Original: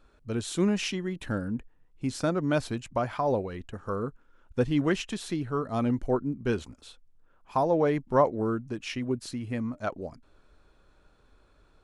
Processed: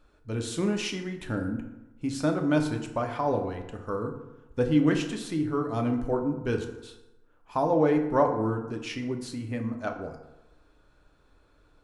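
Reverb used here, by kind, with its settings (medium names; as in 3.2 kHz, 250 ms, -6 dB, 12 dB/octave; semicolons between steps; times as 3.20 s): FDN reverb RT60 1 s, low-frequency decay 0.95×, high-frequency decay 0.55×, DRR 3.5 dB; trim -1.5 dB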